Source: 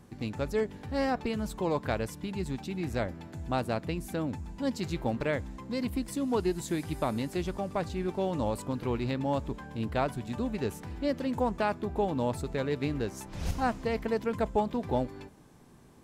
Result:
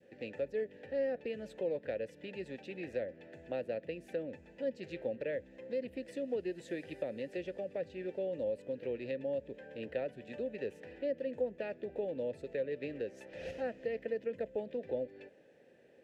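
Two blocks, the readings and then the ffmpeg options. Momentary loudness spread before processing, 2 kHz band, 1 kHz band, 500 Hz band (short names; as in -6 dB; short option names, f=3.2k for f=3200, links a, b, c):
6 LU, -8.5 dB, -19.5 dB, -3.5 dB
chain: -filter_complex "[0:a]adynamicequalizer=threshold=0.00631:dfrequency=1100:dqfactor=0.72:tfrequency=1100:tqfactor=0.72:attack=5:release=100:ratio=0.375:range=2.5:mode=cutabove:tftype=bell,asplit=3[a][b][c];[a]bandpass=f=530:t=q:w=8,volume=0dB[d];[b]bandpass=f=1.84k:t=q:w=8,volume=-6dB[e];[c]bandpass=f=2.48k:t=q:w=8,volume=-9dB[f];[d][e][f]amix=inputs=3:normalize=0,acrossover=split=310[g][h];[h]acompressor=threshold=-49dB:ratio=2.5[i];[g][i]amix=inputs=2:normalize=0,volume=9.5dB"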